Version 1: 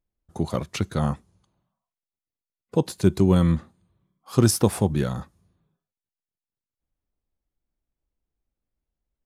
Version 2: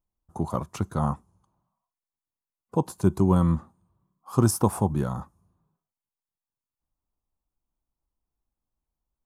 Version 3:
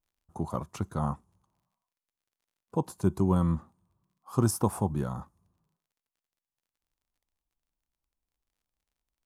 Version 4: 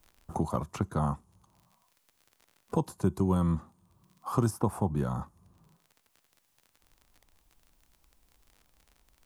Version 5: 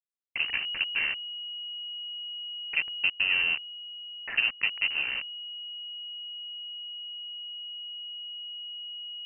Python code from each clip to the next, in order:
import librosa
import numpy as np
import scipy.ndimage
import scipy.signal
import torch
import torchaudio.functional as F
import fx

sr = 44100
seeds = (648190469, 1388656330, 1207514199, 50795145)

y1 = fx.graphic_eq(x, sr, hz=(500, 1000, 2000, 4000), db=(-4, 10, -10, -10))
y1 = y1 * 10.0 ** (-2.0 / 20.0)
y2 = fx.dmg_crackle(y1, sr, seeds[0], per_s=44.0, level_db=-59.0)
y2 = y2 * 10.0 ** (-4.5 / 20.0)
y3 = fx.band_squash(y2, sr, depth_pct=70)
y4 = fx.delta_hold(y3, sr, step_db=-29.0)
y4 = fx.freq_invert(y4, sr, carrier_hz=2900)